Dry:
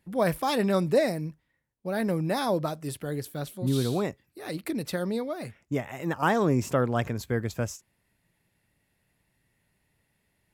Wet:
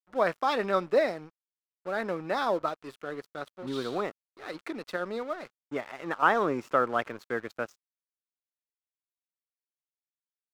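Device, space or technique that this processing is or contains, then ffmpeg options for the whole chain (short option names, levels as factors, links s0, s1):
pocket radio on a weak battery: -af "highpass=360,lowpass=3800,aeval=exprs='sgn(val(0))*max(abs(val(0))-0.00422,0)':c=same,equalizer=f=1300:t=o:w=0.46:g=7.5"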